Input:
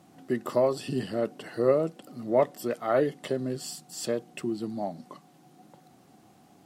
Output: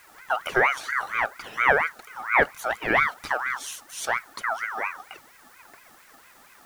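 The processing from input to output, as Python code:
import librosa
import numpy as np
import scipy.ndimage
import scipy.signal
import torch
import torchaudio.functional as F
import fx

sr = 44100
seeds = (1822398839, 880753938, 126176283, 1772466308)

y = fx.spec_box(x, sr, start_s=0.91, length_s=0.23, low_hz=1300.0, high_hz=8300.0, gain_db=-8)
y = fx.quant_dither(y, sr, seeds[0], bits=10, dither='triangular')
y = fx.ring_lfo(y, sr, carrier_hz=1400.0, swing_pct=30, hz=4.3)
y = y * librosa.db_to_amplitude(5.5)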